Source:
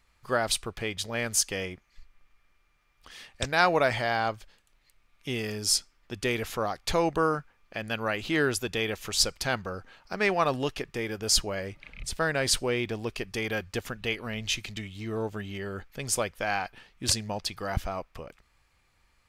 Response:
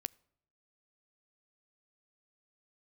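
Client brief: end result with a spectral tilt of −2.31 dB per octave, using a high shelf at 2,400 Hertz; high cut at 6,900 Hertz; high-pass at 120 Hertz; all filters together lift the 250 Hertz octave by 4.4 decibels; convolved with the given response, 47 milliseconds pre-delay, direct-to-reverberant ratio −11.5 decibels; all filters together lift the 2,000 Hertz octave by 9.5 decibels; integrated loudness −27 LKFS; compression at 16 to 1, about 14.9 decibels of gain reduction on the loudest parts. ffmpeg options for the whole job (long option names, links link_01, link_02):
-filter_complex "[0:a]highpass=120,lowpass=6900,equalizer=frequency=250:width_type=o:gain=6,equalizer=frequency=2000:width_type=o:gain=8,highshelf=frequency=2400:gain=8.5,acompressor=threshold=-26dB:ratio=16,asplit=2[link_01][link_02];[1:a]atrim=start_sample=2205,adelay=47[link_03];[link_02][link_03]afir=irnorm=-1:irlink=0,volume=14dB[link_04];[link_01][link_04]amix=inputs=2:normalize=0,volume=-7.5dB"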